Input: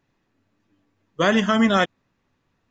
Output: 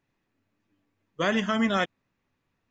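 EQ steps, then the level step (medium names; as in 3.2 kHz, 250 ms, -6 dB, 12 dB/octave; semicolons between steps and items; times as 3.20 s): peaking EQ 2.3 kHz +3.5 dB 0.54 oct; -7.0 dB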